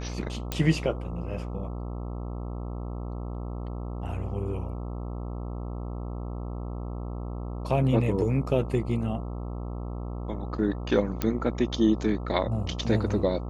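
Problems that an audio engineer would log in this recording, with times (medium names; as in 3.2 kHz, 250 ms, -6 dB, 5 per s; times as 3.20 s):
buzz 60 Hz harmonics 22 -34 dBFS
0.52 s: pop -13 dBFS
11.22 s: pop -12 dBFS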